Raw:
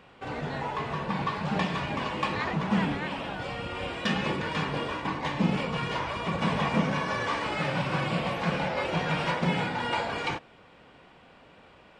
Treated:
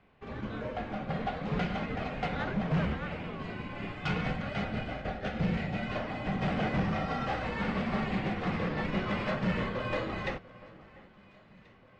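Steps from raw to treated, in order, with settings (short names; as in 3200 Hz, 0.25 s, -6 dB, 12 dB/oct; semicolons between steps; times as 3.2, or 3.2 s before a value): 4.38–5.88 notch 1400 Hz, Q 6.5; frequency shift -360 Hz; overloaded stage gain 23.5 dB; air absorption 120 m; echo with dull and thin repeats by turns 0.692 s, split 1900 Hz, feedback 67%, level -13 dB; upward expander 1.5:1, over -44 dBFS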